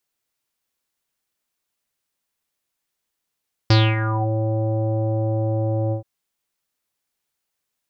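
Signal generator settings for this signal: synth note square A2 24 dB/oct, low-pass 650 Hz, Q 5.5, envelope 3 oct, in 0.57 s, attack 4.4 ms, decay 0.25 s, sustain -10 dB, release 0.11 s, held 2.22 s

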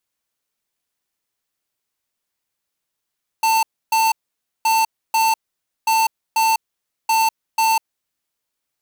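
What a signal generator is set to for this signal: beep pattern square 893 Hz, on 0.20 s, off 0.29 s, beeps 2, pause 0.53 s, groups 4, -16 dBFS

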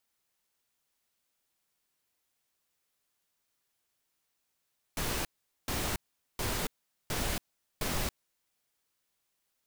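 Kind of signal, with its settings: noise bursts pink, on 0.28 s, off 0.43 s, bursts 5, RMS -32.5 dBFS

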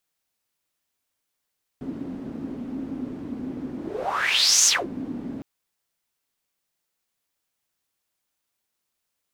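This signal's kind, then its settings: whoosh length 3.61 s, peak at 2.85, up 0.95 s, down 0.22 s, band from 260 Hz, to 6500 Hz, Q 6.7, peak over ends 15.5 dB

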